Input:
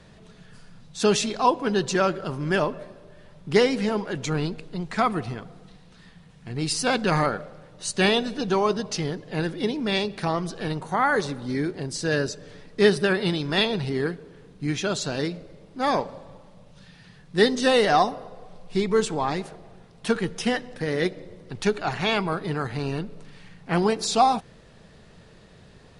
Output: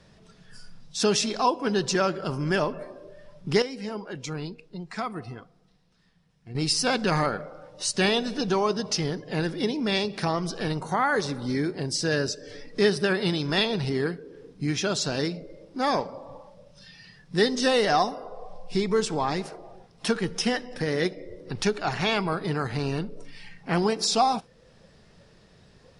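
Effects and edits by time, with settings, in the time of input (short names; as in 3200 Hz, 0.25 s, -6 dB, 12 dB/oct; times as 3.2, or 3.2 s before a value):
3.62–6.55 gain -10.5 dB
whole clip: spectral noise reduction 11 dB; bell 5300 Hz +8 dB 0.27 oct; compressor 1.5:1, threshold -41 dBFS; gain +6 dB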